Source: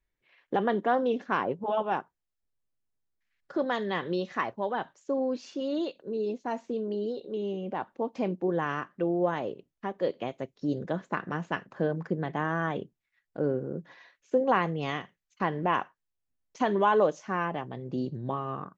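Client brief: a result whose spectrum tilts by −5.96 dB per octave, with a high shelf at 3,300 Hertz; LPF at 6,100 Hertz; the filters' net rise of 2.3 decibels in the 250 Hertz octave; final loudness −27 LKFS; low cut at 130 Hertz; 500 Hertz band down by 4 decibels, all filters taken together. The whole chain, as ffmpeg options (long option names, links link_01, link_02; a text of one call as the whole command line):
ffmpeg -i in.wav -af "highpass=130,lowpass=6100,equalizer=frequency=250:width_type=o:gain=5.5,equalizer=frequency=500:width_type=o:gain=-6.5,highshelf=frequency=3300:gain=-7,volume=5dB" out.wav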